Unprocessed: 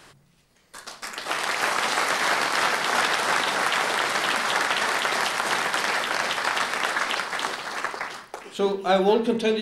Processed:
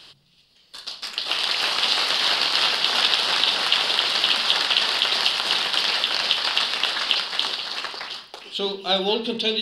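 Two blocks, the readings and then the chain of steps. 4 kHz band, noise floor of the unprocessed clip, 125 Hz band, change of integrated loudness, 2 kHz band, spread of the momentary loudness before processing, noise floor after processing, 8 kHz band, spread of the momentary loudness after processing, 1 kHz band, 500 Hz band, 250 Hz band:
+10.5 dB, -59 dBFS, no reading, +3.5 dB, -2.0 dB, 10 LU, -57 dBFS, -3.5 dB, 11 LU, -4.5 dB, -4.5 dB, -4.5 dB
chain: high-order bell 3.7 kHz +15.5 dB 1.1 oct; trim -4.5 dB

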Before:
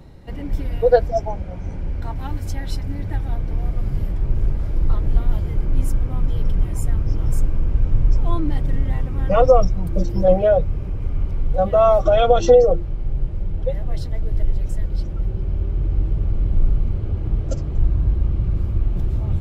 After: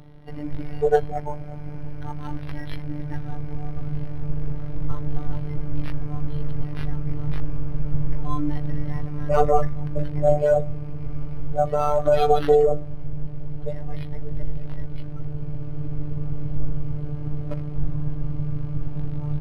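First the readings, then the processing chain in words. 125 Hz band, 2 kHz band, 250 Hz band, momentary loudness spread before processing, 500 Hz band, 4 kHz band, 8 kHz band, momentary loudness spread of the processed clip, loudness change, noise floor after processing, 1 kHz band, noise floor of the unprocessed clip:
-4.5 dB, -2.5 dB, -1.5 dB, 13 LU, -5.0 dB, -7.0 dB, no reading, 15 LU, -5.5 dB, -30 dBFS, -2.0 dB, -28 dBFS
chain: de-hum 196.9 Hz, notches 28; robot voice 148 Hz; decimation joined by straight lines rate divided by 6×

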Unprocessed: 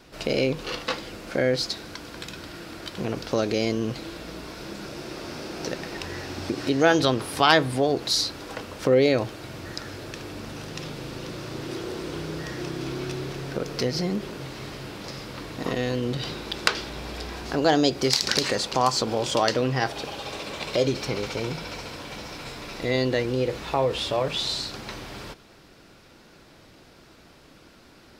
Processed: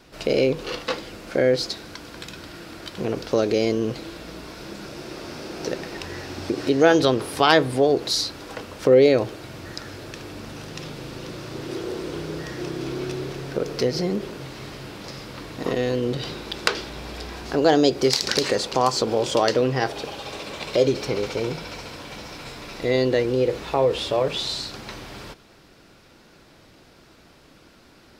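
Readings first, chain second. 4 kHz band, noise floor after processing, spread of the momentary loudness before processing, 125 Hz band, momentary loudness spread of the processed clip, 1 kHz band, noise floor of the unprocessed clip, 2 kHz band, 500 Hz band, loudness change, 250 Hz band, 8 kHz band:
0.0 dB, -52 dBFS, 16 LU, +0.5 dB, 19 LU, +1.0 dB, -52 dBFS, 0.0 dB, +4.5 dB, +3.5 dB, +2.5 dB, 0.0 dB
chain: dynamic bell 430 Hz, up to +6 dB, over -37 dBFS, Q 1.5

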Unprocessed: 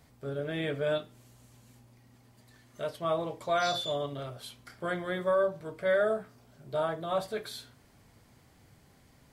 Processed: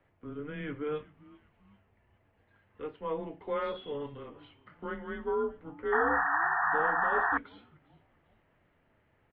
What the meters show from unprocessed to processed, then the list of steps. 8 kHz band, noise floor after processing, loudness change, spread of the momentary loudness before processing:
under -30 dB, -70 dBFS, +0.5 dB, 12 LU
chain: frequency-shifting echo 392 ms, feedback 47%, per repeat -130 Hz, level -21.5 dB; mistuned SSB -150 Hz 210–2900 Hz; painted sound noise, 5.92–7.38 s, 680–1900 Hz -24 dBFS; trim -4.5 dB

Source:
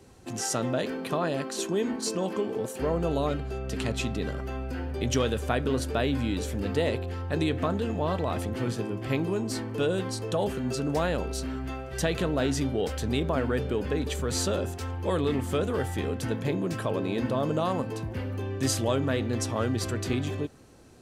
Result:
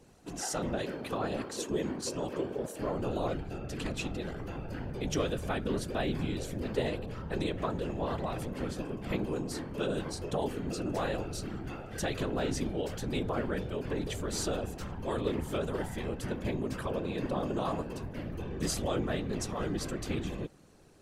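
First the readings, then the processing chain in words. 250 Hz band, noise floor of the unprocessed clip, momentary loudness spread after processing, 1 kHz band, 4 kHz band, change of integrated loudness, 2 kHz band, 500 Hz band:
-5.5 dB, -38 dBFS, 6 LU, -5.0 dB, -5.5 dB, -5.5 dB, -5.5 dB, -5.5 dB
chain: whisper effect; trim -5.5 dB

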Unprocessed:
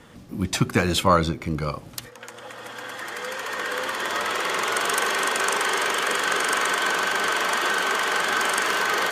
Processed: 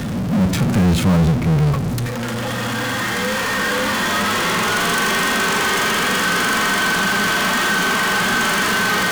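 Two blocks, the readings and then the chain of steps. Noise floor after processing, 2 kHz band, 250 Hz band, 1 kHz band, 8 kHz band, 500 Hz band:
-23 dBFS, +6.0 dB, +11.5 dB, +4.0 dB, +5.5 dB, +4.0 dB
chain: resonant low shelf 300 Hz +10 dB, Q 1.5; harmonic-percussive split percussive -14 dB; power-law waveshaper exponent 0.35; trim -4 dB

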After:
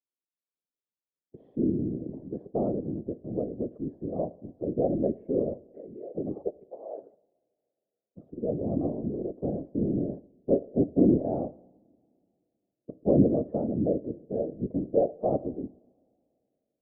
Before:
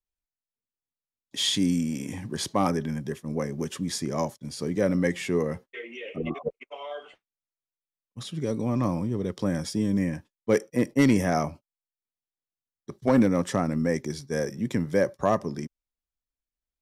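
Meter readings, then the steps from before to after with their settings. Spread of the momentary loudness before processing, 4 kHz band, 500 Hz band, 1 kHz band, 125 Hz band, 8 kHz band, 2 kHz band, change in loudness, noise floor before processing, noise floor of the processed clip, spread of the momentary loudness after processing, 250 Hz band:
15 LU, under -40 dB, -0.5 dB, -8.5 dB, -4.0 dB, under -40 dB, under -40 dB, -2.5 dB, under -85 dBFS, under -85 dBFS, 16 LU, -2.0 dB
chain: Chebyshev band-pass 220–600 Hz, order 3; whisper effect; two-slope reverb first 0.77 s, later 2.7 s, from -18 dB, DRR 17.5 dB

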